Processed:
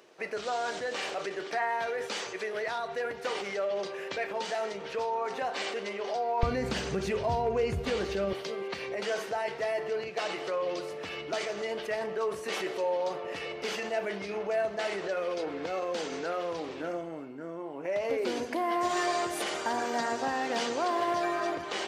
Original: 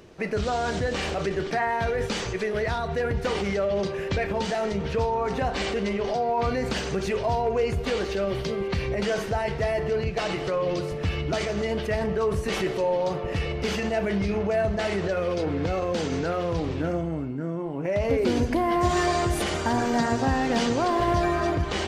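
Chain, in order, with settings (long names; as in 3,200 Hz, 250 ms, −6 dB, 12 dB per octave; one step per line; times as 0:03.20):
high-pass filter 460 Hz 12 dB per octave, from 0:06.43 60 Hz, from 0:08.33 400 Hz
level −4 dB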